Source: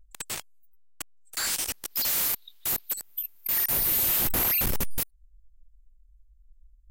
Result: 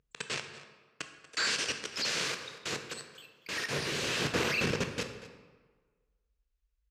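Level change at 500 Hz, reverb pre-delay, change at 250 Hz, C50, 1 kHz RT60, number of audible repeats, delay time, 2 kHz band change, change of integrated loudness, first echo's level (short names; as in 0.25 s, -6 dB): +5.0 dB, 12 ms, +2.0 dB, 7.5 dB, 1.4 s, 1, 0.237 s, +4.0 dB, -7.0 dB, -16.5 dB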